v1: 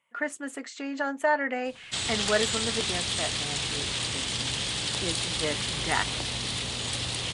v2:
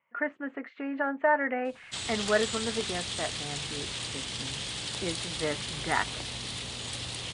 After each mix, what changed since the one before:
speech: add low-pass filter 2,300 Hz 24 dB per octave
background −5.5 dB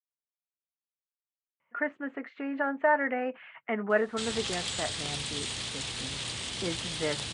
speech: entry +1.60 s
background: entry +2.25 s

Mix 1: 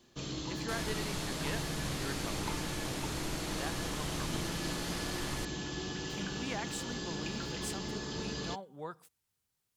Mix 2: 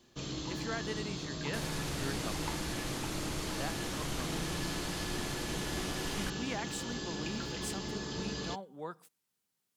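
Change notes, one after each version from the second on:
speech: add low shelf with overshoot 130 Hz −12 dB, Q 1.5
second sound: entry +0.85 s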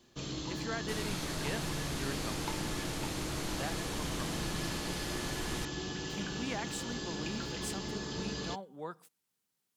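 second sound: entry −0.65 s

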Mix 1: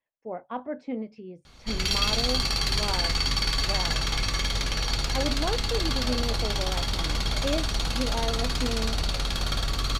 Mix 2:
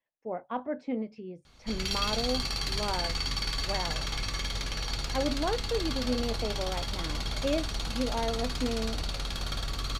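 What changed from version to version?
background −6.0 dB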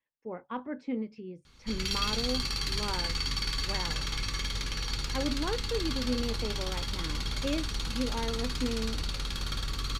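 master: add parametric band 670 Hz −13 dB 0.45 octaves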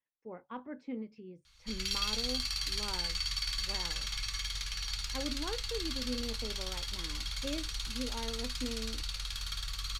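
speech −6.5 dB
background: add guitar amp tone stack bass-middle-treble 10-0-10

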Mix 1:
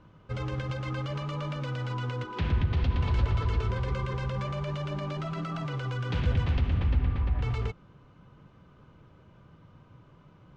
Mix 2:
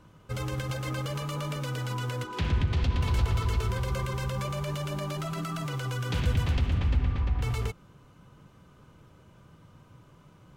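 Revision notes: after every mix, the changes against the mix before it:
speech: entry −2.35 s
background: remove high-frequency loss of the air 170 metres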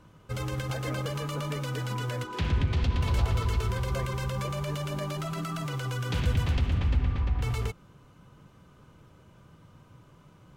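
speech +8.0 dB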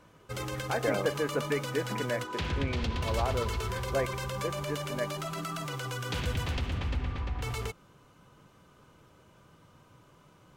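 speech +11.0 dB
master: add bass and treble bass −7 dB, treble +2 dB

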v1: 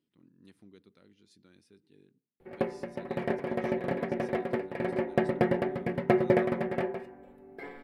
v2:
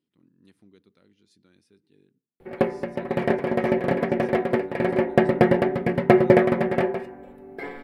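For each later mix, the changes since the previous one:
background +8.5 dB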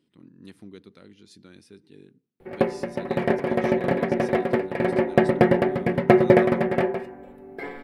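speech +11.5 dB

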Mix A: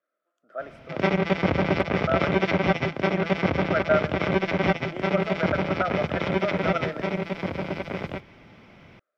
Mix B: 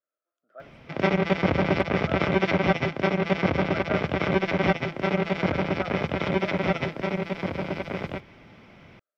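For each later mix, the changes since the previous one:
speech −11.0 dB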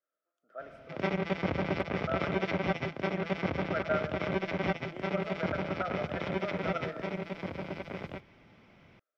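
speech: send +10.5 dB
background −8.5 dB

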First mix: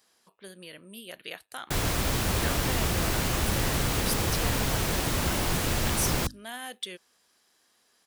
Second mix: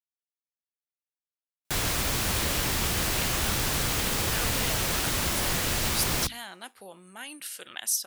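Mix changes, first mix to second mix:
speech: entry +1.90 s
master: add tilt shelving filter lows −3.5 dB, about 1,200 Hz

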